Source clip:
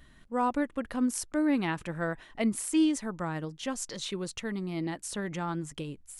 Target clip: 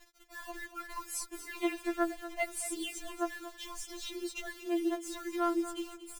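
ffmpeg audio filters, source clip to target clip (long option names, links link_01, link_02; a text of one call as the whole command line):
ffmpeg -i in.wav -filter_complex "[0:a]asettb=1/sr,asplit=3[link_01][link_02][link_03];[link_01]atrim=end=2.934[link_04];[link_02]atrim=start=2.93:end=5.45,asetpts=PTS-STARTPTS,afade=type=in:duration=0.004:curve=qsin,afade=type=out:start_time=2.516:duration=0.004:curve=qsin,highshelf=frequency=5300:gain=-5.5[link_05];[link_03]atrim=start=5.446[link_06];[link_04][link_05]acrossfade=duration=0.004:curve1=hsin:curve2=qsin[link_07];[link_07][link_06]acrossfade=duration=0.004:curve1=qsin:curve2=hsin,acrusher=bits=7:mix=0:aa=0.000001,aecho=1:1:234|468|702:0.224|0.0761|0.0259,afftfilt=real='re*4*eq(mod(b,16),0)':imag='im*4*eq(mod(b,16),0)':win_size=2048:overlap=0.75" out.wav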